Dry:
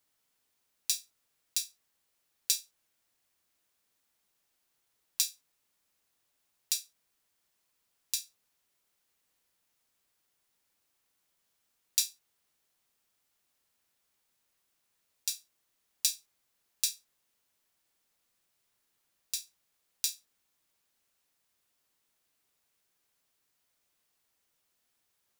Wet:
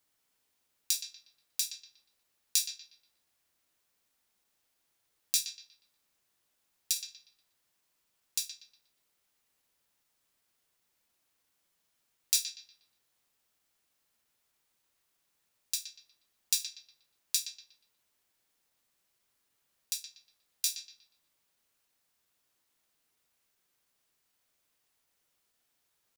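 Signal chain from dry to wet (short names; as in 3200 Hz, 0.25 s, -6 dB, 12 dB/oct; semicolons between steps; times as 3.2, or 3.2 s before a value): tempo 0.97×; analogue delay 0.12 s, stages 4096, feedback 32%, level -8.5 dB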